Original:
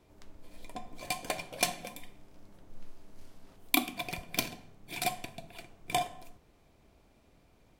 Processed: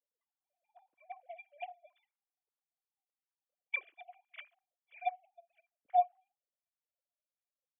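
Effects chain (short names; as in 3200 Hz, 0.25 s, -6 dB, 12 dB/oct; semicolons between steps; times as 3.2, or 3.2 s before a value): sine-wave speech; harmonic tremolo 1.7 Hz, depth 70%, crossover 860 Hz; spectral expander 1.5:1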